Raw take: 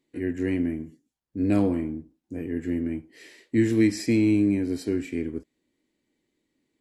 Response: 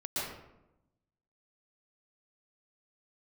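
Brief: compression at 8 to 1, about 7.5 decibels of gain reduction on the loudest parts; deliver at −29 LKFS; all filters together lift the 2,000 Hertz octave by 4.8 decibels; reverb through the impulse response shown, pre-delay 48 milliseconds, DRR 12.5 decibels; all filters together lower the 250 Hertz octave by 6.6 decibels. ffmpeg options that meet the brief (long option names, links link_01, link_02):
-filter_complex "[0:a]equalizer=frequency=250:width_type=o:gain=-9,equalizer=frequency=2000:width_type=o:gain=5.5,acompressor=threshold=-28dB:ratio=8,asplit=2[link_01][link_02];[1:a]atrim=start_sample=2205,adelay=48[link_03];[link_02][link_03]afir=irnorm=-1:irlink=0,volume=-17.5dB[link_04];[link_01][link_04]amix=inputs=2:normalize=0,volume=6dB"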